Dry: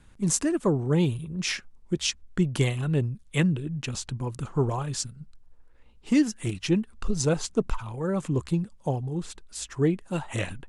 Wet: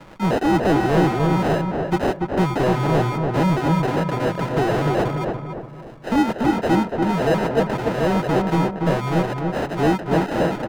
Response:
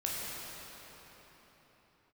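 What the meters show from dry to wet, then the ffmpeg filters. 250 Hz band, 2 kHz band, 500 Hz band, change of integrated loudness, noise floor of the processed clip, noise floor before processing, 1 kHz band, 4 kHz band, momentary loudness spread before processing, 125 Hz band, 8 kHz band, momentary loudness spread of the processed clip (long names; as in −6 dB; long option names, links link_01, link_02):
+7.0 dB, +9.5 dB, +10.0 dB, +7.5 dB, −37 dBFS, −54 dBFS, +17.5 dB, +1.5 dB, 9 LU, +5.0 dB, −9.5 dB, 5 LU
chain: -filter_complex "[0:a]lowpass=9800,aecho=1:1:6:0.52,acrossover=split=140|390|2400[link_01][link_02][link_03][link_04];[link_01]acompressor=threshold=-43dB:ratio=6[link_05];[link_05][link_02][link_03][link_04]amix=inputs=4:normalize=0,acrusher=samples=39:mix=1:aa=0.000001,asplit=2[link_06][link_07];[link_07]highpass=frequency=720:poles=1,volume=31dB,asoftclip=type=tanh:threshold=-10dB[link_08];[link_06][link_08]amix=inputs=2:normalize=0,lowpass=frequency=1700:poles=1,volume=-6dB,asplit=2[link_09][link_10];[link_10]adelay=288,lowpass=frequency=1500:poles=1,volume=-3dB,asplit=2[link_11][link_12];[link_12]adelay=288,lowpass=frequency=1500:poles=1,volume=0.45,asplit=2[link_13][link_14];[link_14]adelay=288,lowpass=frequency=1500:poles=1,volume=0.45,asplit=2[link_15][link_16];[link_16]adelay=288,lowpass=frequency=1500:poles=1,volume=0.45,asplit=2[link_17][link_18];[link_18]adelay=288,lowpass=frequency=1500:poles=1,volume=0.45,asplit=2[link_19][link_20];[link_20]adelay=288,lowpass=frequency=1500:poles=1,volume=0.45[link_21];[link_09][link_11][link_13][link_15][link_17][link_19][link_21]amix=inputs=7:normalize=0"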